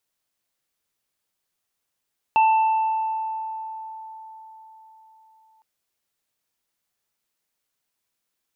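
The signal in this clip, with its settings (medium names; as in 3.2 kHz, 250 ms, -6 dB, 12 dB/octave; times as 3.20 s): sine partials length 3.26 s, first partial 882 Hz, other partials 2.67 kHz, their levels -12 dB, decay 4.48 s, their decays 1.68 s, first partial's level -13 dB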